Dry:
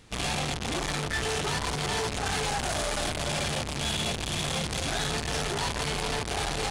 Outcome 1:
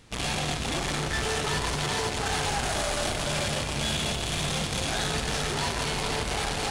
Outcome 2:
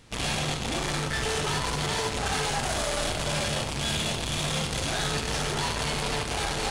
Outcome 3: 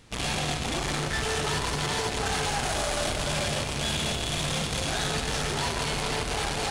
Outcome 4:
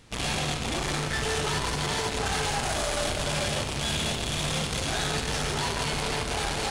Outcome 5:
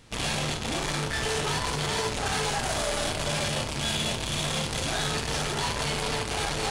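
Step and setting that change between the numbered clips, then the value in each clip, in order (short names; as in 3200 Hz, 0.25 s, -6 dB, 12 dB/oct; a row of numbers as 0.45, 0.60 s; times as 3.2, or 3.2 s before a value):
non-linear reverb, gate: 500, 130, 340, 230, 80 ms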